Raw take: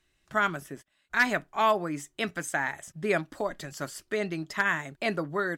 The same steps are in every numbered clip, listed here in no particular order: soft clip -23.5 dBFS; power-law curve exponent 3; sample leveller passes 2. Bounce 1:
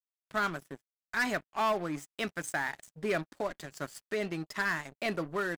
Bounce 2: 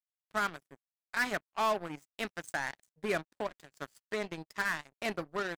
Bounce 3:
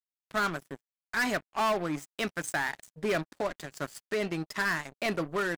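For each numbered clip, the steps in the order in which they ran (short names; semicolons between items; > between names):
soft clip > sample leveller > power-law curve; sample leveller > power-law curve > soft clip; sample leveller > soft clip > power-law curve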